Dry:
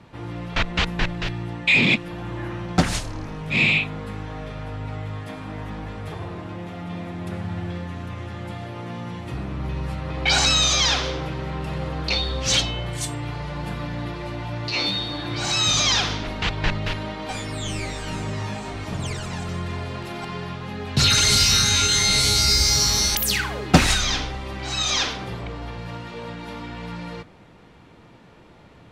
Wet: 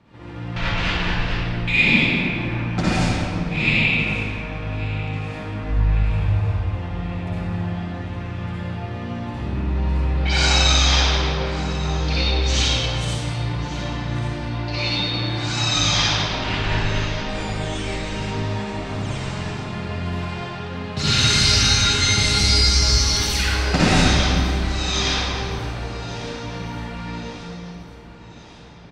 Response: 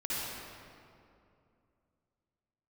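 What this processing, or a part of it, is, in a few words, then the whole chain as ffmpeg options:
stairwell: -filter_complex "[0:a]lowpass=7600,asplit=3[s0][s1][s2];[s0]afade=t=out:st=5.63:d=0.02[s3];[s1]asubboost=boost=11.5:cutoff=77,afade=t=in:st=5.63:d=0.02,afade=t=out:st=6.59:d=0.02[s4];[s2]afade=t=in:st=6.59:d=0.02[s5];[s3][s4][s5]amix=inputs=3:normalize=0,aecho=1:1:1144|2288|3432|4576:0.141|0.072|0.0367|0.0187[s6];[1:a]atrim=start_sample=2205[s7];[s6][s7]afir=irnorm=-1:irlink=0,volume=0.668"

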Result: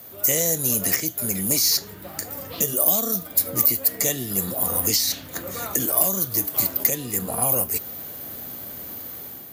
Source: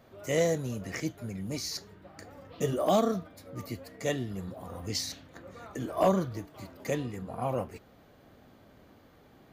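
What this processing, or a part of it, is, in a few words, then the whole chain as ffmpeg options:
FM broadcast chain: -filter_complex "[0:a]highpass=61,dynaudnorm=f=420:g=3:m=2.24,acrossover=split=200|4400[s0][s1][s2];[s0]acompressor=threshold=0.00794:ratio=4[s3];[s1]acompressor=threshold=0.0224:ratio=4[s4];[s2]acompressor=threshold=0.00562:ratio=4[s5];[s3][s4][s5]amix=inputs=3:normalize=0,aemphasis=mode=production:type=50fm,alimiter=limit=0.0891:level=0:latency=1:release=414,asoftclip=type=hard:threshold=0.0631,lowpass=f=15000:w=0.5412,lowpass=f=15000:w=1.3066,aemphasis=mode=production:type=50fm,volume=2.11"

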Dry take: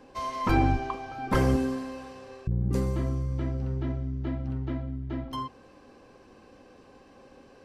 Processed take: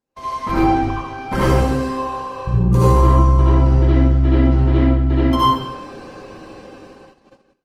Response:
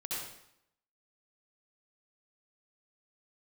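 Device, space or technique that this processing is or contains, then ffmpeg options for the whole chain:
speakerphone in a meeting room: -filter_complex "[0:a]asettb=1/sr,asplit=3[s0][s1][s2];[s0]atrim=end=1.894[s3];[s1]atrim=start=1.89:end=3.55,asetpts=PTS-STARTPTS,afade=t=in:d=0.004:c=qsin,afade=t=out:st=1.656:d=0.004:c=qsin,equalizer=f=250:t=o:w=0.33:g=-10,equalizer=f=1000:t=o:w=0.33:g=12,equalizer=f=2000:t=o:w=0.33:g=-6,equalizer=f=5000:t=o:w=0.33:g=-6,equalizer=f=8000:t=o:w=0.33:g=-4[s4];[s2]atrim=start=3.546[s5];[s3][s4]acrossfade=d=0.004:c1=hsin:c2=qsin[s6];[s6][s5]acrossfade=d=0.004:c1=qsin:c2=hsin[s7];[1:a]atrim=start_sample=2205[s8];[s7][s8]afir=irnorm=-1:irlink=0,asplit=2[s9][s10];[s10]adelay=150,highpass=300,lowpass=3400,asoftclip=type=hard:threshold=0.106,volume=0.158[s11];[s9][s11]amix=inputs=2:normalize=0,dynaudnorm=f=540:g=7:m=4.22,agate=range=0.0282:threshold=0.00631:ratio=16:detection=peak,volume=1.68" -ar 48000 -c:a libopus -b:a 24k

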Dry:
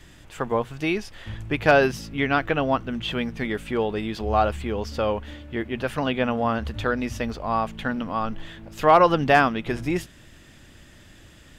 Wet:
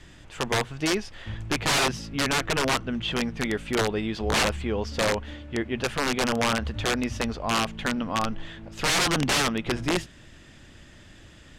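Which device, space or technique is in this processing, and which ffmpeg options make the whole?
overflowing digital effects unit: -af "aeval=exprs='(mod(6.68*val(0)+1,2)-1)/6.68':c=same,lowpass=8200"

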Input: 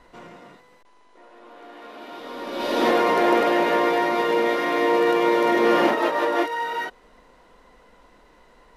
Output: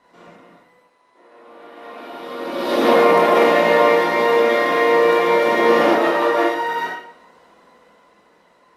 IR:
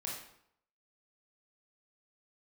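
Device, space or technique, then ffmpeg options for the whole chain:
far-field microphone of a smart speaker: -filter_complex "[1:a]atrim=start_sample=2205[s0];[0:a][s0]afir=irnorm=-1:irlink=0,highpass=150,dynaudnorm=f=230:g=13:m=5.62,volume=0.891" -ar 48000 -c:a libopus -b:a 48k

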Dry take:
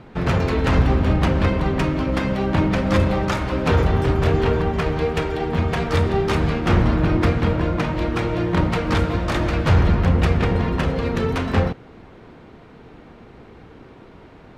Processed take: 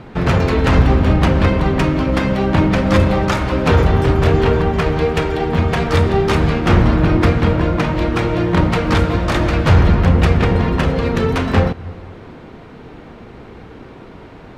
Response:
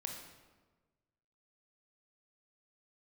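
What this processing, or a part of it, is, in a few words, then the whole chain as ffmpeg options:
ducked reverb: -filter_complex "[0:a]asplit=3[s0][s1][s2];[1:a]atrim=start_sample=2205[s3];[s1][s3]afir=irnorm=-1:irlink=0[s4];[s2]apad=whole_len=642918[s5];[s4][s5]sidechaincompress=threshold=0.0224:ratio=8:attack=16:release=158,volume=0.447[s6];[s0][s6]amix=inputs=2:normalize=0,volume=1.68"

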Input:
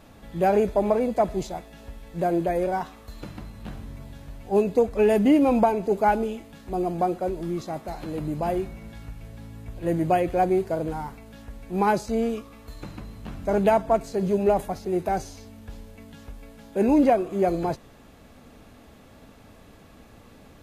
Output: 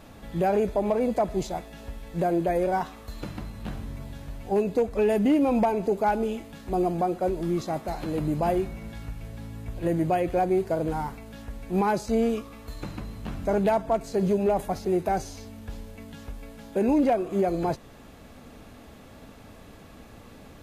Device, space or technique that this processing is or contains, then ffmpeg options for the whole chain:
clipper into limiter: -af "asoftclip=type=hard:threshold=0.251,alimiter=limit=0.126:level=0:latency=1:release=266,volume=1.33"

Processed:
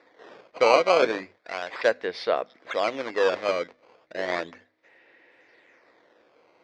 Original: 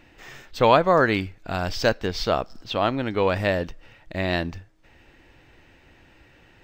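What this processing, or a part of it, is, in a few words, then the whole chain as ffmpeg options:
circuit-bent sampling toy: -filter_complex "[0:a]acrusher=samples=14:mix=1:aa=0.000001:lfo=1:lforange=22.4:lforate=0.34,highpass=480,equalizer=f=490:t=q:w=4:g=5,equalizer=f=840:t=q:w=4:g=-5,equalizer=f=1300:t=q:w=4:g=-4,equalizer=f=2000:t=q:w=4:g=5,equalizer=f=2900:t=q:w=4:g=-7,equalizer=f=4200:t=q:w=4:g=-3,lowpass=f=4500:w=0.5412,lowpass=f=4500:w=1.3066,bandreject=f=50:t=h:w=6,bandreject=f=100:t=h:w=6,bandreject=f=150:t=h:w=6,bandreject=f=200:t=h:w=6,bandreject=f=250:t=h:w=6,asettb=1/sr,asplit=3[s0][s1][s2];[s0]atrim=end=1.374[s3];[s1]atrim=start=1.37:end=1.85,asetpts=PTS-STARTPTS,afade=t=in:d=0.004:c=qsin,afade=t=out:st=0.476:d=0.004:c=qsin,lowshelf=f=490:g=-8.5[s4];[s2]atrim=start=1.846[s5];[s3][s4]acrossfade=d=0.004:c1=hsin:c2=qsin[s6];[s6][s5]acrossfade=d=0.004:c1=qsin:c2=hsin"

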